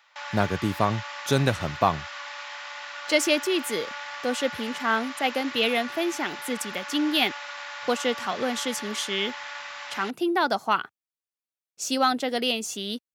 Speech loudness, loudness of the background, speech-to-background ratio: -26.5 LUFS, -36.0 LUFS, 9.5 dB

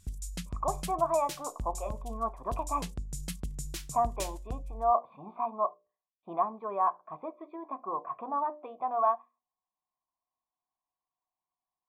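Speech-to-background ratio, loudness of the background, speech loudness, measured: 8.0 dB, -41.0 LUFS, -33.0 LUFS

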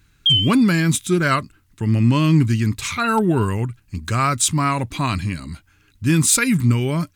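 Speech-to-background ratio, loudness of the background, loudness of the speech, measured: -1.5 dB, -17.5 LUFS, -19.0 LUFS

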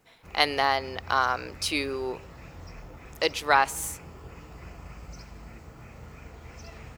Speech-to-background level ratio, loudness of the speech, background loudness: 19.5 dB, -26.5 LUFS, -46.0 LUFS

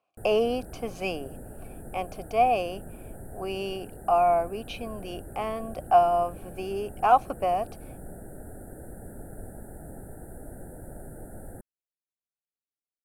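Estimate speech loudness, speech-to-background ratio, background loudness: -27.0 LUFS, 17.5 dB, -44.5 LUFS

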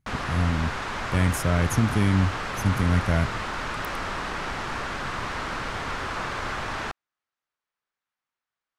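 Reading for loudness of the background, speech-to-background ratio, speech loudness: -30.5 LUFS, 5.0 dB, -25.5 LUFS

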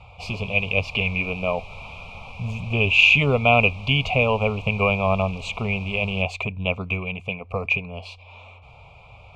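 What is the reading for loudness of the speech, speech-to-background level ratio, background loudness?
-21.5 LUFS, 19.0 dB, -40.5 LUFS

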